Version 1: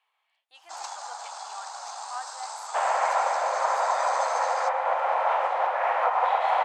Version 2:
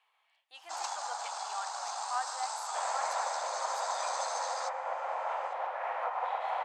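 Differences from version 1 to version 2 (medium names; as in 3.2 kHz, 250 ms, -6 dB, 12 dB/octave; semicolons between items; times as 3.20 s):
second sound -12.0 dB; reverb: on, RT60 0.55 s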